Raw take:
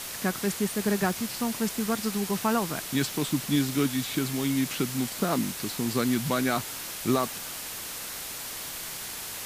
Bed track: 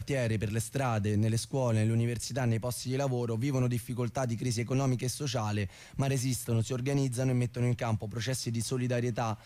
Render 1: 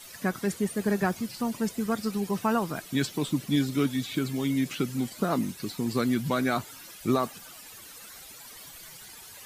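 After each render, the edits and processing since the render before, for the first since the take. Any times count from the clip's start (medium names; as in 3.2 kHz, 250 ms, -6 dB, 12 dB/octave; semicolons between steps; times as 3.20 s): noise reduction 14 dB, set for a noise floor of -37 dBFS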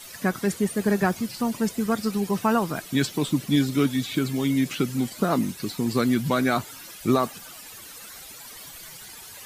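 trim +4 dB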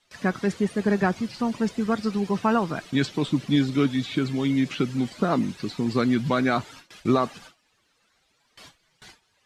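low-pass 4.8 kHz 12 dB/octave; gate with hold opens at -34 dBFS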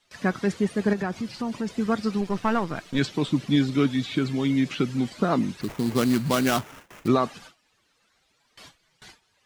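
0.93–1.70 s: compression 2.5:1, threshold -26 dBFS; 2.21–2.99 s: partial rectifier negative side -7 dB; 5.61–7.08 s: sample-rate reducer 4.4 kHz, jitter 20%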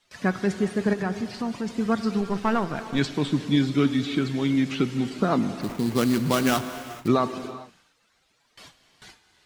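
gated-style reverb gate 460 ms flat, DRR 10.5 dB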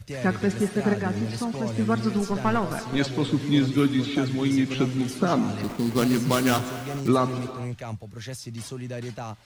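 add bed track -3.5 dB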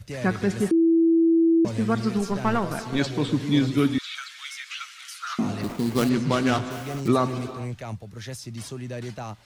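0.71–1.65 s: bleep 330 Hz -15 dBFS; 3.98–5.39 s: elliptic high-pass 1.3 kHz, stop band 80 dB; 6.09–6.71 s: distance through air 83 m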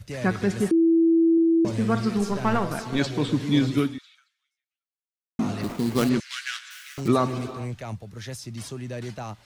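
1.32–2.67 s: flutter echo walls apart 9.2 m, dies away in 0.29 s; 3.78–5.39 s: fade out exponential; 6.20–6.98 s: elliptic high-pass 1.6 kHz, stop band 80 dB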